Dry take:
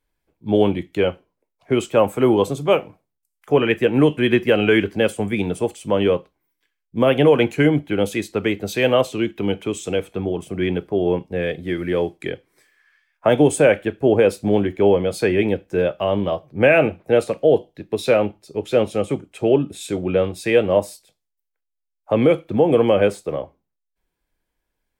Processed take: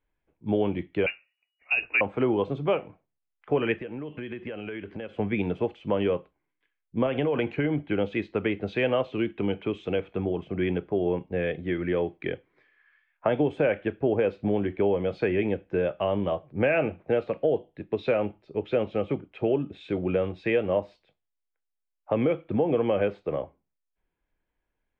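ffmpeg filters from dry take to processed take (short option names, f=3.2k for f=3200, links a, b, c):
-filter_complex "[0:a]asettb=1/sr,asplit=3[a][b][c];[a]atrim=end=1.064[d];[b]atrim=start=1.06:end=2.01,asetpts=PTS-STARTPTS,afade=t=in:d=0.004:c=qsin,afade=t=out:st=0.946:d=0.004:c=qsin,lowpass=f=2.5k:t=q:w=0.5098,lowpass=f=2.5k:t=q:w=0.6013,lowpass=f=2.5k:t=q:w=0.9,lowpass=f=2.5k:t=q:w=2.563,afreqshift=-2900[e];[c]atrim=start=2.006[f];[d][e]acrossfade=d=0.004:c1=hsin:c2=qsin[g];[g][f]acrossfade=d=0.004:c1=qsin:c2=hsin,asettb=1/sr,asplit=3[h][i][j];[h]atrim=end=3.764[k];[i]atrim=start=3.76:end=5.19,asetpts=PTS-STARTPTS,afade=t=in:d=0.004:c=qsin,afade=t=out:st=1.426:d=0.004:c=qsin,acompressor=threshold=-28dB:ratio=16:attack=3.2:release=140:knee=1:detection=peak[l];[j]atrim=start=5.186[m];[k][l]acrossfade=d=0.004:c1=hsin:c2=qsin[n];[n][m]acrossfade=d=0.004:c1=qsin:c2=hsin,asettb=1/sr,asplit=3[o][p][q];[o]atrim=end=7.064[r];[p]atrim=start=7.06:end=7.91,asetpts=PTS-STARTPTS,afade=t=in:d=0.004:c=qsin,afade=t=out:st=0.846:d=0.004:c=qsin,acompressor=threshold=-15dB:ratio=6:attack=3.2:release=140:knee=1:detection=peak[s];[q]atrim=start=7.906[t];[r][s]acrossfade=d=0.004:c1=hsin:c2=qsin[u];[u][t]acrossfade=d=0.004:c1=qsin:c2=hsin,lowpass=f=3k:w=0.5412,lowpass=f=3k:w=1.3066,acompressor=threshold=-19dB:ratio=2.5,volume=-3.5dB"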